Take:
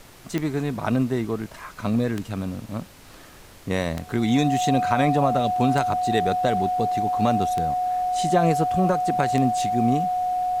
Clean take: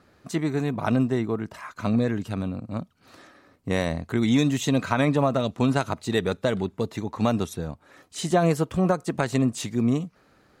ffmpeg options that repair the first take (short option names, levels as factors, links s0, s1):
-af "adeclick=t=4,bandreject=f=730:w=30,afftdn=nr=14:nf=-45"